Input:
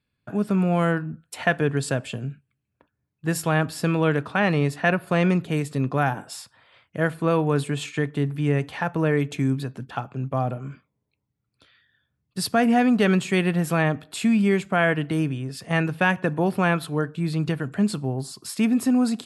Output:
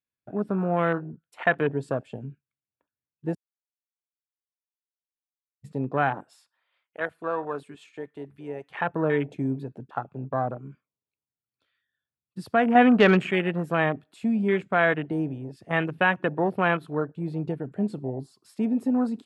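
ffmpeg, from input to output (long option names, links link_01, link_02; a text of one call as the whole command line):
ffmpeg -i in.wav -filter_complex "[0:a]asettb=1/sr,asplit=3[link_01][link_02][link_03];[link_01]atrim=end=6.354[link_04];[link_02]atrim=start=6.35:end=8.7,asetpts=PTS-STARTPTS,afade=type=in:duration=0.004:curve=qsin,afade=type=out:start_time=2.346:duration=0.004:curve=qsin,highpass=frequency=940:poles=1[link_05];[link_03]atrim=start=8.696[link_06];[link_04][link_05]acrossfade=duration=0.004:curve1=hsin:curve2=qsin[link_07];[link_07][link_06]acrossfade=duration=0.004:curve1=qsin:curve2=hsin,asettb=1/sr,asplit=3[link_08][link_09][link_10];[link_08]atrim=end=12.754[link_11];[link_09]atrim=start=12.75:end=13.31,asetpts=PTS-STARTPTS,afade=type=in:duration=0.004:curve=qsin,afade=type=out:start_time=0.556:duration=0.004:curve=qsin,acontrast=36[link_12];[link_10]atrim=start=13.306[link_13];[link_11][link_12]acrossfade=duration=0.004:curve1=hsin:curve2=qsin[link_14];[link_14][link_13]acrossfade=duration=0.004:curve1=qsin:curve2=hsin,asplit=3[link_15][link_16][link_17];[link_15]atrim=end=3.35,asetpts=PTS-STARTPTS,afade=type=out:start_time=3.346:duration=0.004:curve=hsin[link_18];[link_16]atrim=start=3.35:end=5.64,asetpts=PTS-STARTPTS,volume=0[link_19];[link_17]atrim=start=5.64,asetpts=PTS-STARTPTS,afade=type=in:duration=0.004:curve=hsin[link_20];[link_18][link_19][link_20]concat=n=3:v=0:a=1,afwtdn=0.0316,bass=frequency=250:gain=-8,treble=frequency=4000:gain=-6" out.wav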